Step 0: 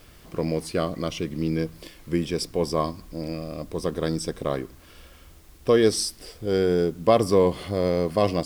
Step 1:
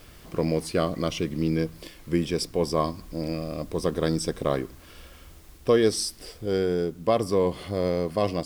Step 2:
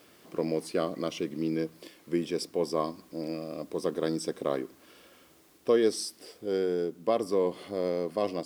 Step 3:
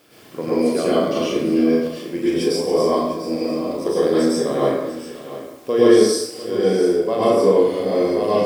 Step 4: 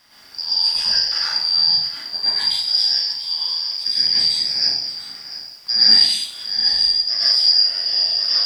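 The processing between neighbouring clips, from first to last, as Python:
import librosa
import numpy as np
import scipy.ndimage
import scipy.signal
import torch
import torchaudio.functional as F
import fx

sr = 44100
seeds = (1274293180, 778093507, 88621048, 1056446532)

y1 = fx.rider(x, sr, range_db=3, speed_s=0.5)
y1 = F.gain(torch.from_numpy(y1), -1.5).numpy()
y2 = scipy.signal.sosfilt(scipy.signal.cheby1(2, 1.0, 310.0, 'highpass', fs=sr, output='sos'), y1)
y2 = fx.low_shelf(y2, sr, hz=370.0, db=5.5)
y2 = F.gain(torch.from_numpy(y2), -5.5).numpy()
y3 = fx.doubler(y2, sr, ms=37.0, db=-4.0)
y3 = y3 + 10.0 ** (-14.0 / 20.0) * np.pad(y3, (int(696 * sr / 1000.0), 0))[:len(y3)]
y3 = fx.rev_plate(y3, sr, seeds[0], rt60_s=0.84, hf_ratio=0.65, predelay_ms=90, drr_db=-8.5)
y3 = F.gain(torch.from_numpy(y3), 1.5).numpy()
y4 = fx.band_shuffle(y3, sr, order='2341')
y4 = fx.peak_eq(y4, sr, hz=1900.0, db=6.5, octaves=2.6)
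y4 = F.gain(torch.from_numpy(y4), -3.5).numpy()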